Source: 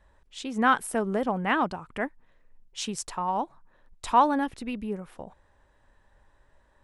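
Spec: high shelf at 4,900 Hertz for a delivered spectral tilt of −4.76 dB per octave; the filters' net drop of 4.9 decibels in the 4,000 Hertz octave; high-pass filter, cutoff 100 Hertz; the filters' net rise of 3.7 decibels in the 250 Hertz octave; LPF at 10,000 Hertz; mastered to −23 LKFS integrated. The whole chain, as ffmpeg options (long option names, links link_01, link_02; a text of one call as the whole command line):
ffmpeg -i in.wav -af "highpass=100,lowpass=10000,equalizer=frequency=250:width_type=o:gain=4.5,equalizer=frequency=4000:width_type=o:gain=-5,highshelf=frequency=4900:gain=-4,volume=4dB" out.wav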